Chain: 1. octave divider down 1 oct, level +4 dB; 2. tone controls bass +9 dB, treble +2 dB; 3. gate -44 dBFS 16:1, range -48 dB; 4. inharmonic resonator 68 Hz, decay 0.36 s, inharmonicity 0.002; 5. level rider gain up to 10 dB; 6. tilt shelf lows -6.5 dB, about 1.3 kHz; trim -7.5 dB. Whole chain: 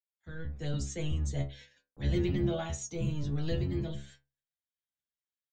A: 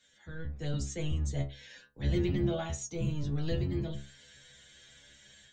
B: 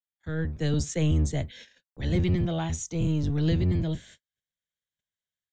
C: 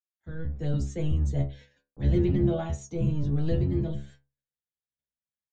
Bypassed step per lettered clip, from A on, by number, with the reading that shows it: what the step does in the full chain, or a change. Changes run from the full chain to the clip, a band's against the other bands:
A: 3, momentary loudness spread change +2 LU; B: 4, 500 Hz band -2.0 dB; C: 6, 8 kHz band -10.0 dB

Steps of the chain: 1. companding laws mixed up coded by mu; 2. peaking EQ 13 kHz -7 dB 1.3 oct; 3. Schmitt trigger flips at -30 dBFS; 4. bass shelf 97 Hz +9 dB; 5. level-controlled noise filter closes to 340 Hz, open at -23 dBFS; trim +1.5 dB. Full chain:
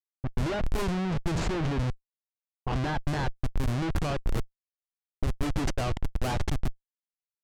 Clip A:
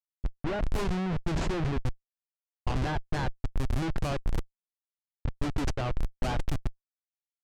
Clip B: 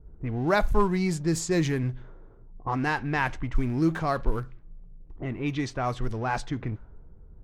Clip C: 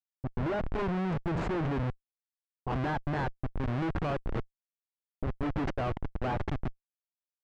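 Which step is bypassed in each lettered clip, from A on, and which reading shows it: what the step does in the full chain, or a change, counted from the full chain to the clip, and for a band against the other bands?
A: 1, distortion -21 dB; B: 3, crest factor change +7.0 dB; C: 4, 4 kHz band -7.5 dB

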